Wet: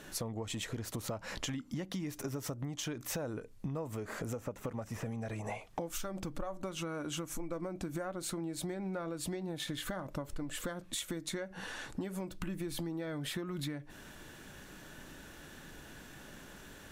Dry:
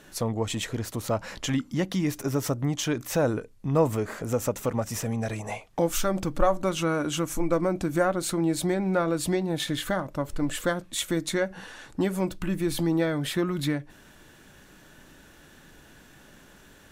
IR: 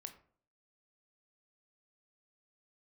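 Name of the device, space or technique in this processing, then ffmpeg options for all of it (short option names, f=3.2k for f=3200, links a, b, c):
serial compression, leveller first: -filter_complex "[0:a]asettb=1/sr,asplit=3[a][b][c];[a]atrim=end=4.364[d];[b]atrim=start=4.36:end=5.9,asetpts=PTS-STARTPTS,afade=t=in:d=0.004:c=qsin,afade=t=out:st=1.536:d=0.004:c=qsin,acrossover=split=2600[e][f];[f]acompressor=threshold=-48dB:ratio=4:attack=1:release=60[g];[e][g]amix=inputs=2:normalize=0[h];[c]atrim=start=5.896[i];[d][h]acrossfade=d=0.004:c1=hsin:c2=qsin[j];[j][i]acrossfade=d=0.004:c1=qsin:c2=hsin,acompressor=threshold=-28dB:ratio=2,acompressor=threshold=-37dB:ratio=6,volume=1dB"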